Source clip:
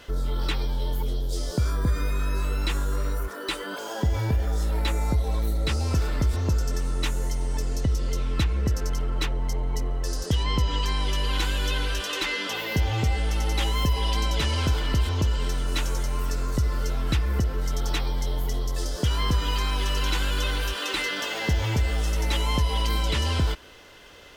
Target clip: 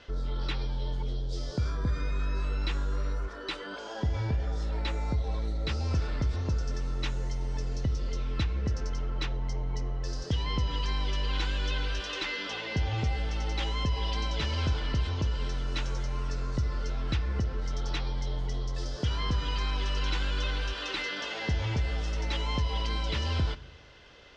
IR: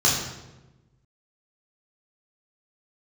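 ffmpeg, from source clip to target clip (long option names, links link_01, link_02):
-filter_complex "[0:a]lowpass=frequency=5800:width=0.5412,lowpass=frequency=5800:width=1.3066,asplit=2[link_01][link_02];[1:a]atrim=start_sample=2205[link_03];[link_02][link_03]afir=irnorm=-1:irlink=0,volume=-35dB[link_04];[link_01][link_04]amix=inputs=2:normalize=0,volume=-5.5dB"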